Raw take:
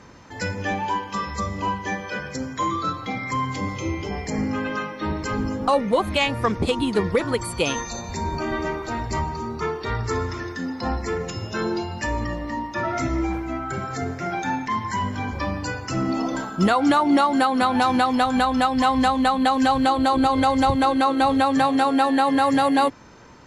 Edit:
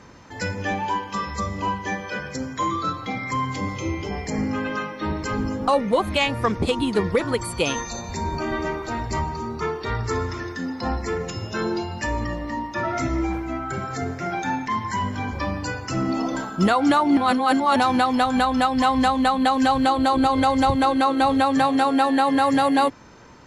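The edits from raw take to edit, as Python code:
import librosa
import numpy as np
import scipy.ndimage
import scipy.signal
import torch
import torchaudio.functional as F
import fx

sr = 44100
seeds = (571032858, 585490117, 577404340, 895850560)

y = fx.edit(x, sr, fx.reverse_span(start_s=17.17, length_s=0.59), tone=tone)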